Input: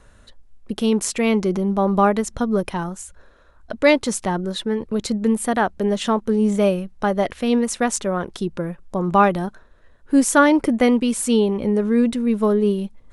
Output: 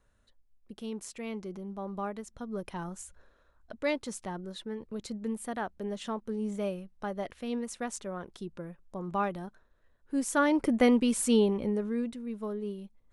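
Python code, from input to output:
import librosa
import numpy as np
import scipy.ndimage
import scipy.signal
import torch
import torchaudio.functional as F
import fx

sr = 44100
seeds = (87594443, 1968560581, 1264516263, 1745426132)

y = fx.gain(x, sr, db=fx.line((2.38, -19.5), (3.0, -9.0), (3.8, -15.5), (10.14, -15.5), (10.81, -6.5), (11.46, -6.5), (12.18, -18.0)))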